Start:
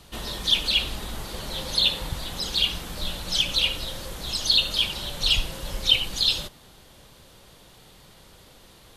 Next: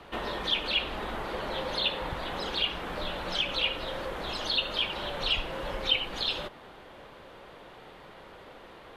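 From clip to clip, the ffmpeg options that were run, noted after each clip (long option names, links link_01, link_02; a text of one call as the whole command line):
ffmpeg -i in.wav -filter_complex "[0:a]acrossover=split=280 2600:gain=0.224 1 0.0631[link_01][link_02][link_03];[link_01][link_02][link_03]amix=inputs=3:normalize=0,asplit=2[link_04][link_05];[link_05]acompressor=threshold=-40dB:ratio=6,volume=3dB[link_06];[link_04][link_06]amix=inputs=2:normalize=0" out.wav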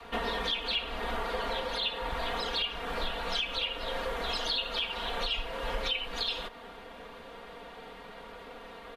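ffmpeg -i in.wav -af "aecho=1:1:4.3:0.94,alimiter=limit=-21dB:level=0:latency=1:release=325,adynamicequalizer=threshold=0.00251:dfrequency=180:dqfactor=0.81:tfrequency=180:tqfactor=0.81:attack=5:release=100:ratio=0.375:range=3.5:mode=cutabove:tftype=bell" out.wav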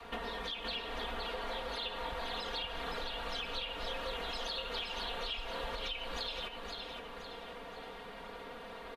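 ffmpeg -i in.wav -af "acompressor=threshold=-35dB:ratio=6,aecho=1:1:518|1036|1554|2072|2590:0.562|0.236|0.0992|0.0417|0.0175,volume=-2dB" out.wav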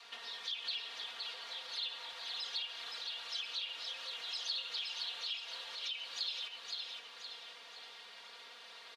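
ffmpeg -i in.wav -filter_complex "[0:a]asplit=2[link_01][link_02];[link_02]alimiter=level_in=11.5dB:limit=-24dB:level=0:latency=1,volume=-11.5dB,volume=0dB[link_03];[link_01][link_03]amix=inputs=2:normalize=0,bandpass=frequency=5100:width_type=q:width=1.6:csg=0,volume=2dB" out.wav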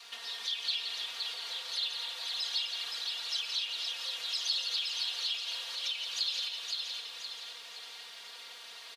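ffmpeg -i in.wav -filter_complex "[0:a]crystalizer=i=2.5:c=0,asplit=2[link_01][link_02];[link_02]aecho=0:1:172|256.6:0.447|0.282[link_03];[link_01][link_03]amix=inputs=2:normalize=0" out.wav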